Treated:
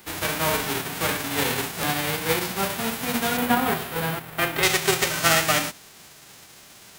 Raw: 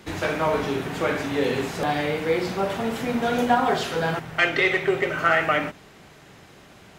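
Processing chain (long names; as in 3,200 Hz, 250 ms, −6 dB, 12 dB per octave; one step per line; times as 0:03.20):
spectral envelope flattened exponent 0.3
parametric band 6,100 Hz −5 dB 1.6 octaves, from 0:03.37 −14.5 dB, from 0:04.63 +2.5 dB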